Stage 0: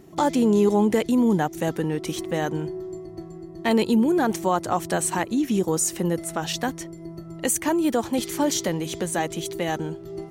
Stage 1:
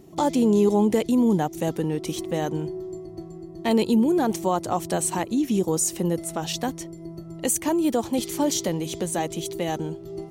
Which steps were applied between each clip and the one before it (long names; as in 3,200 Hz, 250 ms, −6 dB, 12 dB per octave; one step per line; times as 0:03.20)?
parametric band 1,600 Hz −7 dB 0.97 octaves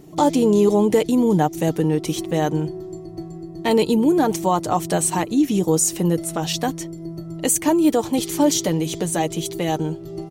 comb filter 6.6 ms, depth 39%
level +4 dB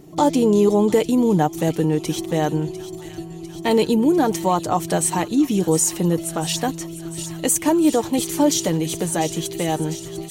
delay with a high-pass on its return 699 ms, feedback 76%, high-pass 1,900 Hz, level −12 dB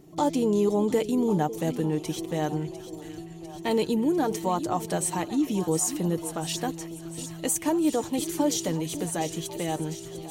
echo through a band-pass that steps 548 ms, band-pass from 330 Hz, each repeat 1.4 octaves, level −10.5 dB
level −7.5 dB